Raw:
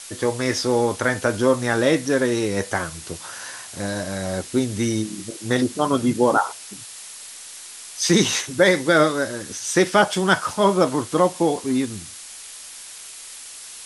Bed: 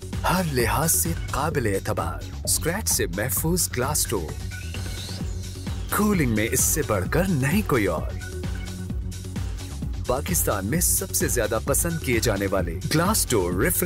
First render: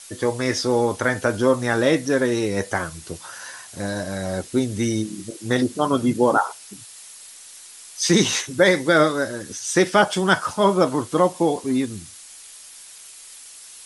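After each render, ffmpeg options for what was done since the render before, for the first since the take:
-af "afftdn=nr=6:nf=-39"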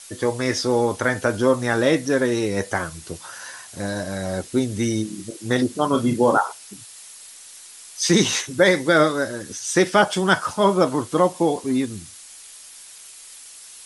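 -filter_complex "[0:a]asettb=1/sr,asplit=3[s0][s1][s2];[s0]atrim=end=5.914[s3];[s1]atrim=start=5.91:end=6.38,asetpts=PTS-STARTPTS,afade=t=in:d=0.004:c=qsin,afade=t=out:st=0.466:d=0.004:c=qsin,asplit=2[s4][s5];[s5]adelay=34,volume=0.447[s6];[s4][s6]amix=inputs=2:normalize=0,atrim=end_sample=20727[s7];[s2]atrim=start=6.376[s8];[s3][s7]acrossfade=d=0.004:c1=hsin:c2=qsin[s9];[s9][s8]acrossfade=d=0.004:c1=qsin:c2=hsin"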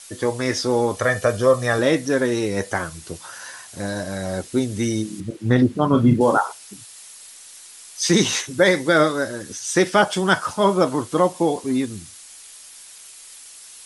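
-filter_complex "[0:a]asettb=1/sr,asplit=3[s0][s1][s2];[s0]atrim=end=0.964[s3];[s1]atrim=start=0.96:end=1.79,asetpts=PTS-STARTPTS,afade=t=in:d=0.004:c=qsin,afade=t=out:st=0.826:d=0.004:c=qsin,aecho=1:1:1.7:0.65,atrim=end_sample=36603[s4];[s2]atrim=start=1.786[s5];[s3][s4]acrossfade=d=0.004:c1=hsin:c2=qsin[s6];[s6][s5]acrossfade=d=0.004:c1=qsin:c2=hsin,asettb=1/sr,asplit=3[s7][s8][s9];[s7]atrim=end=5.204[s10];[s8]atrim=start=5.2:end=6.21,asetpts=PTS-STARTPTS,afade=t=in:d=0.004:c=qsin,afade=t=out:st=1.006:d=0.004:c=qsin,bass=f=250:g=10,treble=f=4000:g=-13[s11];[s9]atrim=start=6.206[s12];[s10][s11]acrossfade=d=0.004:c1=hsin:c2=qsin[s13];[s13][s12]acrossfade=d=0.004:c1=qsin:c2=hsin"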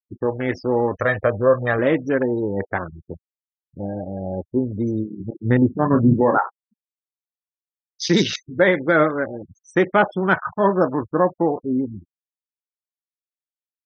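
-af "afwtdn=0.0501,afftfilt=real='re*gte(hypot(re,im),0.02)':imag='im*gte(hypot(re,im),0.02)':win_size=1024:overlap=0.75"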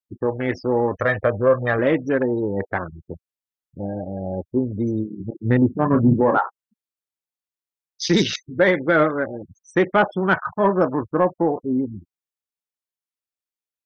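-af "asoftclip=type=tanh:threshold=0.668"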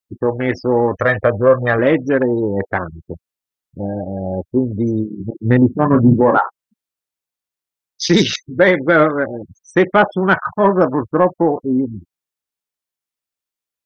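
-af "volume=1.78,alimiter=limit=0.891:level=0:latency=1"

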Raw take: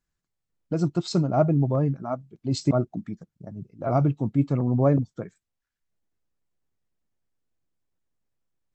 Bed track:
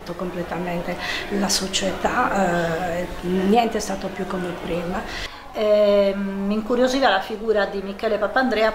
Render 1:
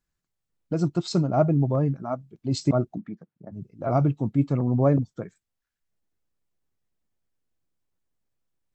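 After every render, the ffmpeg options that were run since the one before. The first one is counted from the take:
-filter_complex "[0:a]asplit=3[s0][s1][s2];[s0]afade=t=out:st=2.97:d=0.02[s3];[s1]highpass=180,lowpass=2400,afade=t=in:st=2.97:d=0.02,afade=t=out:st=3.51:d=0.02[s4];[s2]afade=t=in:st=3.51:d=0.02[s5];[s3][s4][s5]amix=inputs=3:normalize=0"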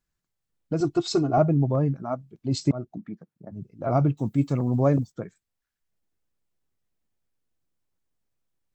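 -filter_complex "[0:a]asettb=1/sr,asplit=3[s0][s1][s2];[s0]atrim=end=0.804[s3];[s1]atrim=start=0.8:end=1.38,asetpts=PTS-STARTPTS,afade=t=in:d=0.004:c=qsin,afade=t=out:st=0.576:d=0.004:c=qsin,aecho=1:1:2.7:0.94,atrim=end_sample=25578[s4];[s2]atrim=start=1.376[s5];[s3][s4]acrossfade=d=0.004:c1=hsin:c2=qsin[s6];[s6][s5]acrossfade=d=0.004:c1=qsin:c2=hsin,asettb=1/sr,asplit=3[s7][s8][s9];[s7]atrim=end=4.174[s10];[s8]atrim=start=4.17:end=5.12,asetpts=PTS-STARTPTS,afade=t=in:d=0.004:c=qsin,afade=t=out:st=0.946:d=0.004:c=qsin,aemphasis=mode=production:type=75fm[s11];[s9]atrim=start=5.116[s12];[s10][s11]acrossfade=d=0.004:c1=hsin:c2=qsin[s13];[s13][s12]acrossfade=d=0.004:c1=qsin:c2=hsin,asplit=2[s14][s15];[s14]atrim=end=2.72,asetpts=PTS-STARTPTS,afade=t=out:st=2.716:d=0.004:c=hsin:silence=0.177828[s16];[s15]atrim=start=2.72,asetpts=PTS-STARTPTS,afade=t=in:d=0.41:silence=0.177828[s17];[s16][s17]concat=n=2:v=0:a=1"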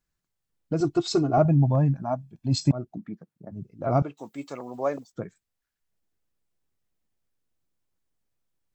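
-filter_complex "[0:a]asettb=1/sr,asplit=3[s0][s1][s2];[s0]atrim=end=1.454[s3];[s1]atrim=start=1.45:end=2.74,asetpts=PTS-STARTPTS,afade=t=in:d=0.004:c=qsin,afade=t=out:st=1.286:d=0.004:c=qsin,aecho=1:1:1.2:0.65,atrim=end_sample=56889[s4];[s2]atrim=start=2.736[s5];[s3][s4]acrossfade=d=0.004:c1=hsin:c2=qsin[s6];[s6][s5]acrossfade=d=0.004:c1=qsin:c2=hsin,asettb=1/sr,asplit=3[s7][s8][s9];[s7]atrim=end=4.024[s10];[s8]atrim=start=4.02:end=5.13,asetpts=PTS-STARTPTS,afade=t=in:d=0.004:c=qsin,afade=t=out:st=1.106:d=0.004:c=qsin,highpass=560[s11];[s9]atrim=start=5.126[s12];[s10][s11]acrossfade=d=0.004:c1=hsin:c2=qsin[s13];[s13][s12]acrossfade=d=0.004:c1=qsin:c2=hsin"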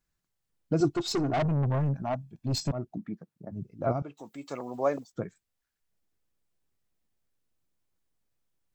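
-filter_complex "[0:a]asettb=1/sr,asplit=3[s0][s1][s2];[s0]atrim=end=0.914[s3];[s1]atrim=start=0.91:end=2.84,asetpts=PTS-STARTPTS,afade=t=in:d=0.004:c=qsin,afade=t=out:st=1.926:d=0.004:c=qsin,aeval=exprs='(tanh(15.8*val(0)+0.2)-tanh(0.2))/15.8':c=same[s4];[s2]atrim=start=2.836[s5];[s3][s4]acrossfade=d=0.004:c1=hsin:c2=qsin[s6];[s6][s5]acrossfade=d=0.004:c1=qsin:c2=hsin,asplit=3[s7][s8][s9];[s7]afade=t=out:st=3.91:d=0.02[s10];[s8]acompressor=threshold=0.00447:ratio=1.5:attack=3.2:release=140:knee=1:detection=peak,afade=t=in:st=3.91:d=0.02,afade=t=out:st=4.47:d=0.02[s11];[s9]afade=t=in:st=4.47:d=0.02[s12];[s10][s11][s12]amix=inputs=3:normalize=0"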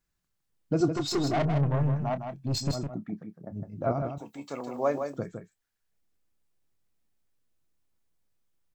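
-filter_complex "[0:a]asplit=2[s0][s1];[s1]adelay=28,volume=0.211[s2];[s0][s2]amix=inputs=2:normalize=0,aecho=1:1:159:0.447"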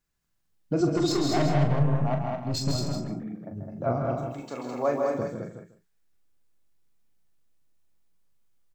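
-filter_complex "[0:a]asplit=2[s0][s1];[s1]adelay=41,volume=0.422[s2];[s0][s2]amix=inputs=2:normalize=0,aecho=1:1:136|211|354:0.398|0.631|0.112"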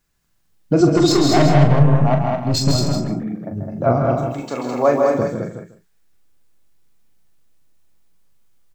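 -af "volume=3.35"

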